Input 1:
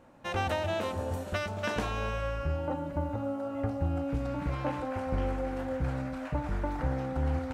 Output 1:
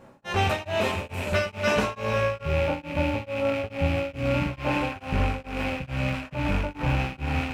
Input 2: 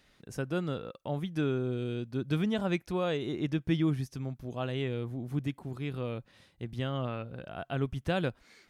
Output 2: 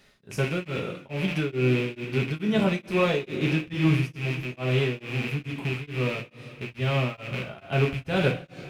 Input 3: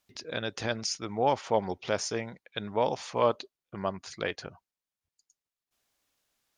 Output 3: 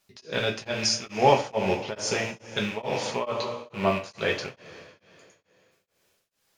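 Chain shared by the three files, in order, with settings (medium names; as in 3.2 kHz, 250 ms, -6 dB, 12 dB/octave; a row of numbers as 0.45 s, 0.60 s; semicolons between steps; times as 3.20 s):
rattle on loud lows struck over -42 dBFS, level -28 dBFS; two-slope reverb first 0.27 s, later 2.8 s, from -18 dB, DRR -1 dB; tremolo of two beating tones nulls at 2.3 Hz; normalise loudness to -27 LUFS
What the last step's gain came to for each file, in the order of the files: +5.5 dB, +4.5 dB, +4.0 dB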